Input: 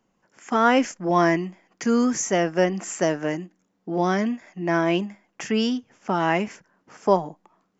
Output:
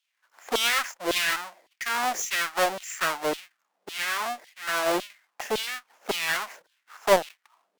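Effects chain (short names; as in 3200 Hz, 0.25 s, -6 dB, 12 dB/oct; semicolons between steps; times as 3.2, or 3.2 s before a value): half-waves squared off; LFO high-pass saw down 1.8 Hz 440–3400 Hz; tube stage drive 2 dB, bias 0.6; gain -4 dB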